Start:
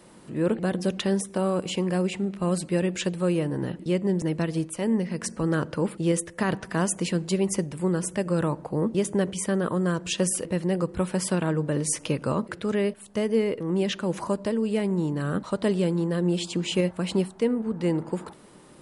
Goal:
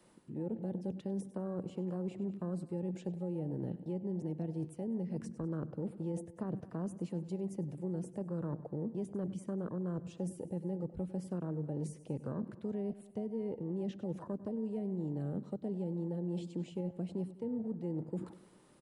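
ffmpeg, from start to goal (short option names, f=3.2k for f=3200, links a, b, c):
-filter_complex "[0:a]afwtdn=0.0398,areverse,acompressor=threshold=-37dB:ratio=5,areverse,aecho=1:1:98|196|294|392:0.119|0.0606|0.0309|0.0158,acrossover=split=290|690[a][b][c];[a]acompressor=threshold=-40dB:ratio=4[d];[b]acompressor=threshold=-47dB:ratio=4[e];[c]acompressor=threshold=-59dB:ratio=4[f];[d][e][f]amix=inputs=3:normalize=0,volume=3.5dB"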